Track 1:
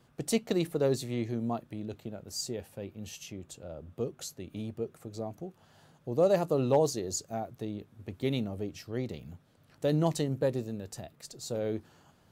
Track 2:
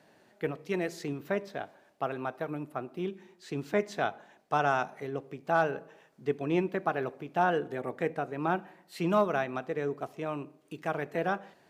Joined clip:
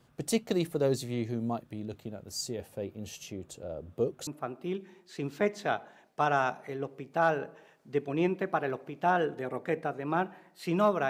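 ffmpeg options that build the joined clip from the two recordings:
ffmpeg -i cue0.wav -i cue1.wav -filter_complex "[0:a]asettb=1/sr,asplit=3[link_01][link_02][link_03];[link_01]atrim=end=2.594[link_04];[link_02]atrim=start=2.59:end=4.27,asetpts=PTS-STARTPTS,afade=type=in:duration=0.004:curve=qsin,afade=type=out:start_time=1.676:duration=0.004:curve=qsin,equalizer=frequency=470:width=0.99:gain=5.5[link_05];[link_03]atrim=start=4.266[link_06];[link_04][link_05]acrossfade=duration=0.004:curve1=hsin:curve2=qsin[link_07];[link_07][link_06]acrossfade=duration=0.004:curve1=qsin:curve2=hsin,apad=whole_dur=11.09,atrim=end=11.09,atrim=end=4.272[link_08];[1:a]atrim=start=2.598:end=9.42[link_09];[link_08][link_09]acrossfade=duration=0.004:curve1=hsin:curve2=hsin" out.wav

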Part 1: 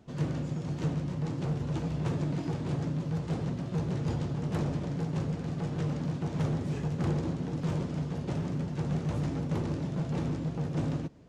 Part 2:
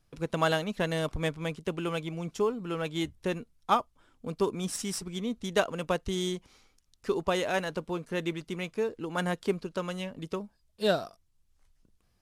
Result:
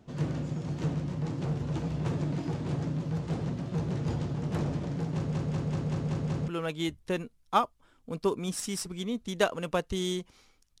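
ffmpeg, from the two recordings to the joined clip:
ffmpeg -i cue0.wav -i cue1.wav -filter_complex "[0:a]apad=whole_dur=10.8,atrim=end=10.8,asplit=7[link_01][link_02][link_03][link_04][link_05][link_06][link_07];[link_01]atrim=end=5.342[link_08];[link_02]atrim=start=5.148:end=5.342[link_09];[link_03]atrim=start=5.148:end=5.342[link_10];[link_04]atrim=start=5.148:end=5.342[link_11];[link_05]atrim=start=5.148:end=5.342[link_12];[link_06]atrim=start=5.148:end=5.342[link_13];[link_07]atrim=start=5.148:end=5.342[link_14];[1:a]atrim=start=2.638:end=6.96[link_15];[link_08][link_09]acrossfade=duration=0.004:curve1=hsin:curve2=hsin[link_16];[link_16][link_10]acrossfade=duration=0.004:curve1=hsin:curve2=hsin[link_17];[link_17][link_11]acrossfade=duration=0.004:curve1=hsin:curve2=hsin[link_18];[link_18][link_12]acrossfade=duration=0.004:curve1=hsin:curve2=hsin[link_19];[link_19][link_13]acrossfade=duration=0.004:curve1=hsin:curve2=hsin[link_20];[link_20][link_14]acrossfade=duration=0.004:curve1=hsin:curve2=hsin[link_21];[link_21][link_15]acrossfade=duration=0.004:curve1=hsin:curve2=hsin" out.wav

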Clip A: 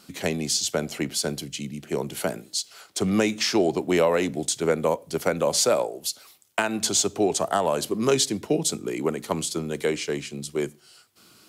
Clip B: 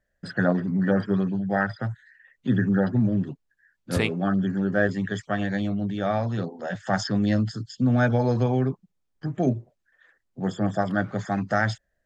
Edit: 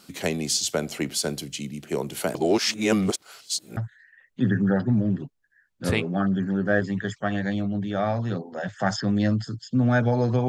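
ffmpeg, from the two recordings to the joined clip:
ffmpeg -i cue0.wav -i cue1.wav -filter_complex "[0:a]apad=whole_dur=10.48,atrim=end=10.48,asplit=2[link_01][link_02];[link_01]atrim=end=2.352[link_03];[link_02]atrim=start=2.348:end=3.772,asetpts=PTS-STARTPTS,areverse[link_04];[1:a]atrim=start=1.838:end=8.55[link_05];[link_03][link_04]acrossfade=duration=0.004:curve1=hsin:curve2=hsin[link_06];[link_06][link_05]acrossfade=duration=0.004:curve1=hsin:curve2=hsin" out.wav

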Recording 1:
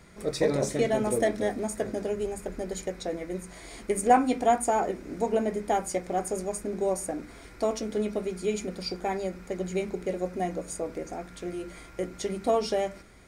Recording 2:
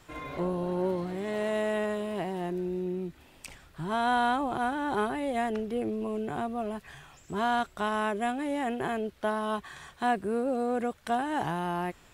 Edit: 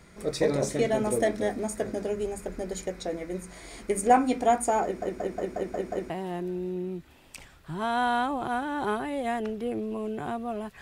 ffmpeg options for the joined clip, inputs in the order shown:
ffmpeg -i cue0.wav -i cue1.wav -filter_complex "[0:a]apad=whole_dur=10.81,atrim=end=10.81,asplit=7[link_01][link_02][link_03][link_04][link_05][link_06][link_07];[link_01]atrim=end=5.022[link_08];[link_02]atrim=start=4.838:end=5.022[link_09];[link_03]atrim=start=4.838:end=5.022[link_10];[link_04]atrim=start=4.838:end=5.022[link_11];[link_05]atrim=start=4.838:end=5.022[link_12];[link_06]atrim=start=4.838:end=5.022[link_13];[link_07]atrim=start=4.838:end=5.022[link_14];[1:a]atrim=start=2.198:end=6.91[link_15];[link_08][link_09]acrossfade=duration=0.004:curve1=hsin:curve2=hsin[link_16];[link_16][link_10]acrossfade=duration=0.004:curve1=hsin:curve2=hsin[link_17];[link_17][link_11]acrossfade=duration=0.004:curve1=hsin:curve2=hsin[link_18];[link_18][link_12]acrossfade=duration=0.004:curve1=hsin:curve2=hsin[link_19];[link_19][link_13]acrossfade=duration=0.004:curve1=hsin:curve2=hsin[link_20];[link_20][link_14]acrossfade=duration=0.004:curve1=hsin:curve2=hsin[link_21];[link_21][link_15]acrossfade=duration=0.004:curve1=hsin:curve2=hsin" out.wav

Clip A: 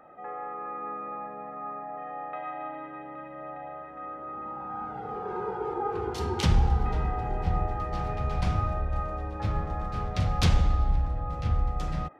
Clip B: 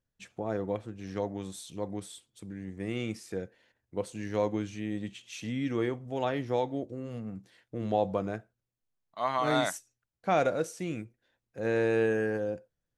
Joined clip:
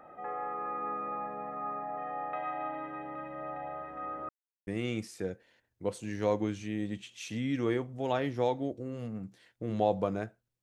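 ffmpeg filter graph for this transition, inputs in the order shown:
ffmpeg -i cue0.wav -i cue1.wav -filter_complex "[0:a]apad=whole_dur=10.62,atrim=end=10.62,asplit=2[link_01][link_02];[link_01]atrim=end=4.29,asetpts=PTS-STARTPTS,afade=type=out:start_time=4.286:duration=0.004:curve=hsin[link_03];[link_02]atrim=start=4.29:end=4.67,asetpts=PTS-STARTPTS,volume=0[link_04];[1:a]atrim=start=2.79:end=8.74,asetpts=PTS-STARTPTS,afade=type=in:duration=0.004:curve=hsin[link_05];[link_03][link_04][link_05]concat=n=3:v=0:a=1" out.wav

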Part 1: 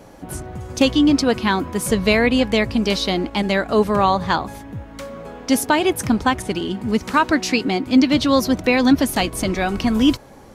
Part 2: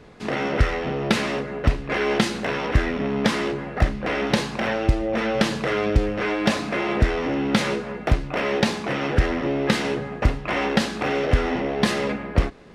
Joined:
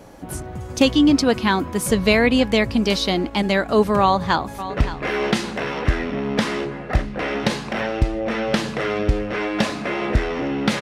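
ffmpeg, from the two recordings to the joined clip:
ffmpeg -i cue0.wav -i cue1.wav -filter_complex "[0:a]apad=whole_dur=10.81,atrim=end=10.81,atrim=end=4.702[link_01];[1:a]atrim=start=1.568:end=7.68[link_02];[link_01][link_02]acrossfade=duration=0.004:curve1=hsin:curve2=hsin,asplit=2[link_03][link_04];[link_04]afade=type=in:start_time=4.01:duration=0.01,afade=type=out:start_time=4.7:duration=0.01,aecho=0:1:570|1140|1710:0.223872|0.0783552|0.0274243[link_05];[link_03][link_05]amix=inputs=2:normalize=0" out.wav

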